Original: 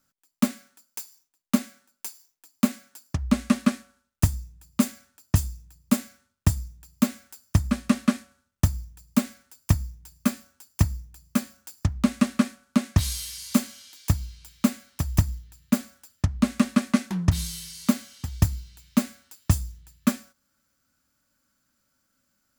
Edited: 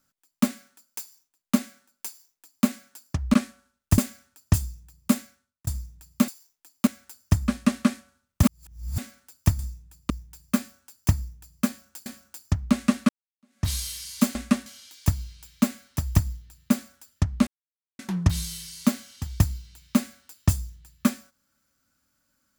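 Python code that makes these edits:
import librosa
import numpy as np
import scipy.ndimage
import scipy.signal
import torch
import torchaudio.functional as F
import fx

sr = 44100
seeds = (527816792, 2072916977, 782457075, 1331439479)

y = fx.edit(x, sr, fx.duplicate(start_s=2.07, length_s=0.59, to_s=7.1),
    fx.move(start_s=3.34, length_s=0.31, to_s=13.68),
    fx.move(start_s=4.29, length_s=0.51, to_s=9.82),
    fx.fade_out_span(start_s=5.97, length_s=0.52),
    fx.reverse_span(start_s=8.66, length_s=0.55),
    fx.repeat(start_s=11.39, length_s=0.39, count=2),
    fx.fade_in_span(start_s=12.42, length_s=0.59, curve='exp'),
    fx.silence(start_s=16.49, length_s=0.52), tone=tone)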